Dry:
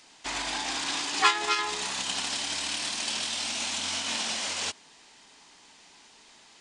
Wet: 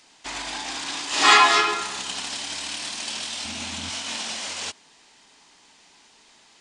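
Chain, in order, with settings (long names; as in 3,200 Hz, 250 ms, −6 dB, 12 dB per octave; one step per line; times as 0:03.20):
0:01.07–0:01.53: thrown reverb, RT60 1.1 s, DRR −10.5 dB
0:03.45–0:03.90: bass and treble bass +13 dB, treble −3 dB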